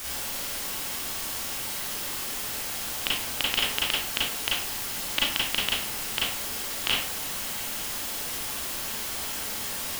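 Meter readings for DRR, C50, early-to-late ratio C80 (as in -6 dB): -5.0 dB, 1.0 dB, 6.5 dB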